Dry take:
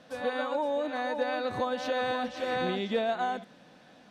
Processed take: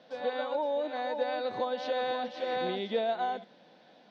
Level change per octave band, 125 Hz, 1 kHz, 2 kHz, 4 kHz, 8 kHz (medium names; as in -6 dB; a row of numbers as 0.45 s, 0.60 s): -7.0 dB, -1.5 dB, -5.0 dB, -1.5 dB, under -10 dB